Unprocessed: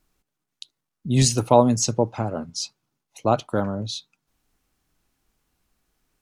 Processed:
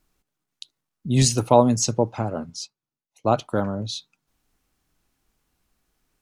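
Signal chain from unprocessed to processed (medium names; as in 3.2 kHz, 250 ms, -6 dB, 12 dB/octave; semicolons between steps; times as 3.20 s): 2.56–3.29 s: upward expansion 1.5:1, over -48 dBFS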